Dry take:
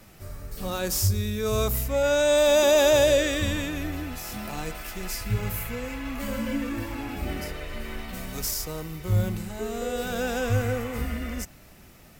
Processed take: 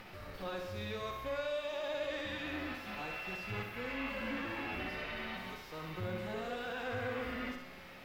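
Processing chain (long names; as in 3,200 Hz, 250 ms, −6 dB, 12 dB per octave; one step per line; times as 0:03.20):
spectral tilt +3.5 dB per octave
downward compressor 4 to 1, threshold −26 dBFS, peak gain reduction 11 dB
brickwall limiter −23 dBFS, peak gain reduction 10 dB
upward compression, threshold −36 dBFS
phase-vocoder stretch with locked phases 0.66×
tube saturation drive 38 dB, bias 0.6
high-frequency loss of the air 360 metres
tuned comb filter 180 Hz, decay 1.6 s, mix 80%
flutter between parallel walls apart 10.8 metres, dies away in 0.63 s
level +17.5 dB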